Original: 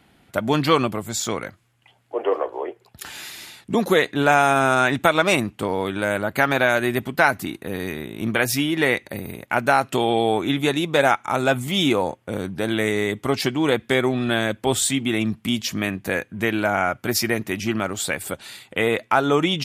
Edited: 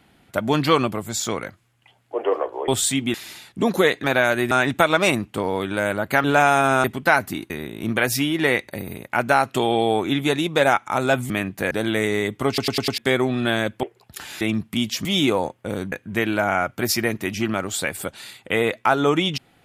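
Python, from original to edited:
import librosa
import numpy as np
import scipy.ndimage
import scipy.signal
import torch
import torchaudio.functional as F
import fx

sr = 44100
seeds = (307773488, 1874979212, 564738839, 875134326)

y = fx.edit(x, sr, fx.swap(start_s=2.68, length_s=0.58, other_s=14.67, other_length_s=0.46),
    fx.swap(start_s=4.16, length_s=0.6, other_s=6.49, other_length_s=0.47),
    fx.cut(start_s=7.62, length_s=0.26),
    fx.swap(start_s=11.68, length_s=0.87, other_s=15.77, other_length_s=0.41),
    fx.stutter_over(start_s=13.32, slice_s=0.1, count=5), tone=tone)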